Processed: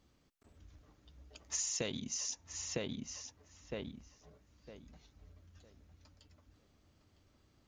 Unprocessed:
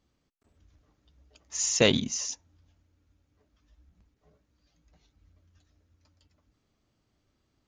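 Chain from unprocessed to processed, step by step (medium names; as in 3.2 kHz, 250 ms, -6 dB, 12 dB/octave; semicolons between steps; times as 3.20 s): on a send: filtered feedback delay 957 ms, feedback 24%, low-pass 2.8 kHz, level -10 dB; on the sum: compression 16:1, threshold -38 dBFS, peak gain reduction 22.5 dB; trim +3.5 dB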